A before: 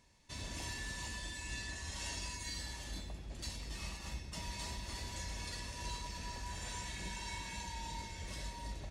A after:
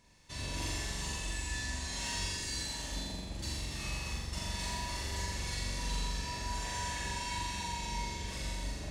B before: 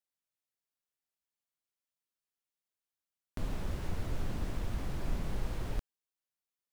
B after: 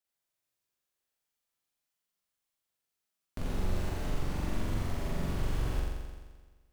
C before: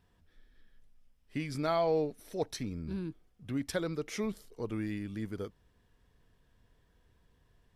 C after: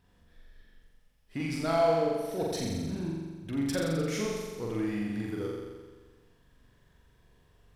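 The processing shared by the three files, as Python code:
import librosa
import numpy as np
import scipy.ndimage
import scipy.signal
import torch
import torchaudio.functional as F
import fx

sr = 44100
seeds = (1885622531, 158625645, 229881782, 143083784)

p1 = np.clip(x, -10.0 ** (-37.0 / 20.0), 10.0 ** (-37.0 / 20.0))
p2 = x + (p1 * librosa.db_to_amplitude(-4.0))
p3 = fx.room_flutter(p2, sr, wall_m=7.4, rt60_s=1.4)
y = p3 * librosa.db_to_amplitude(-2.5)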